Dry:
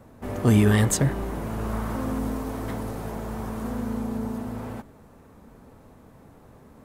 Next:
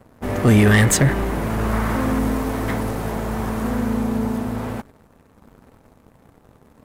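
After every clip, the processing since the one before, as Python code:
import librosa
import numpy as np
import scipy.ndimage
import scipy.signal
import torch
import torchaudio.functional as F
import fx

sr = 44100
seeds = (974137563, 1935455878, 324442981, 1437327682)

y = fx.dynamic_eq(x, sr, hz=2000.0, q=1.5, threshold_db=-48.0, ratio=4.0, max_db=7)
y = fx.leveller(y, sr, passes=2)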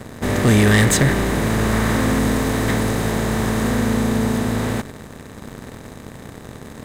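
y = fx.bin_compress(x, sr, power=0.6)
y = fx.peak_eq(y, sr, hz=3800.0, db=6.5, octaves=0.27)
y = F.gain(torch.from_numpy(y), -2.0).numpy()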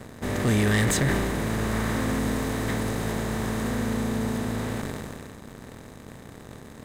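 y = fx.sustainer(x, sr, db_per_s=23.0)
y = F.gain(torch.from_numpy(y), -8.5).numpy()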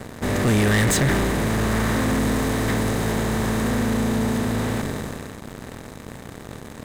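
y = fx.leveller(x, sr, passes=2)
y = F.gain(torch.from_numpy(y), -1.0).numpy()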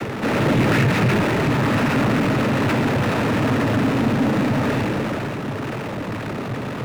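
y = scipy.signal.sosfilt(scipy.signal.butter(6, 3000.0, 'lowpass', fs=sr, output='sos'), x)
y = fx.noise_vocoder(y, sr, seeds[0], bands=12)
y = fx.power_curve(y, sr, exponent=0.5)
y = F.gain(torch.from_numpy(y), -3.0).numpy()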